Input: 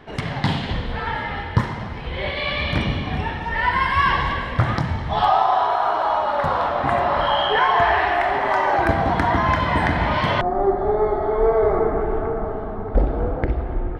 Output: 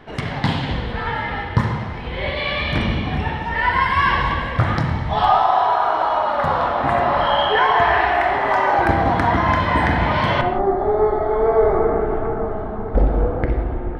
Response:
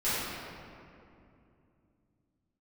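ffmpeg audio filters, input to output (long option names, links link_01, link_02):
-filter_complex "[0:a]asplit=2[link_01][link_02];[1:a]atrim=start_sample=2205,afade=type=out:start_time=0.24:duration=0.01,atrim=end_sample=11025,lowpass=4400[link_03];[link_02][link_03]afir=irnorm=-1:irlink=0,volume=-14.5dB[link_04];[link_01][link_04]amix=inputs=2:normalize=0"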